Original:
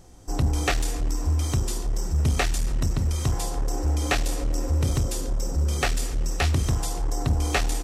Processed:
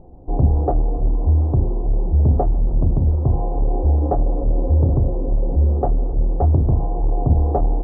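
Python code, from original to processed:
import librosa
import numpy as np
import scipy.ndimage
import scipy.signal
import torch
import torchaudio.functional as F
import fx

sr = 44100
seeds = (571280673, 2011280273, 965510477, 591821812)

y = scipy.signal.sosfilt(scipy.signal.butter(6, 830.0, 'lowpass', fs=sr, output='sos'), x)
y = fx.hum_notches(y, sr, base_hz=50, count=6)
y = y * 10.0 ** (8.0 / 20.0)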